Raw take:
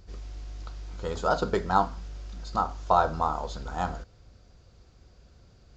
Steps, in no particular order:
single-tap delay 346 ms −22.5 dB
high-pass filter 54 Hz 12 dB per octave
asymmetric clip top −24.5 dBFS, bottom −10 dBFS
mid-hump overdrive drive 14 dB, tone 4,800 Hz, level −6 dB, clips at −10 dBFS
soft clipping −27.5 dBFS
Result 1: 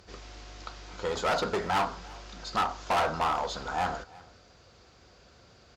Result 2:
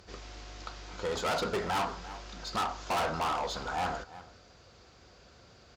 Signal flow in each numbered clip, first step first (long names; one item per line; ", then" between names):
high-pass filter, then soft clipping, then mid-hump overdrive, then asymmetric clip, then single-tap delay
mid-hump overdrive, then asymmetric clip, then single-tap delay, then soft clipping, then high-pass filter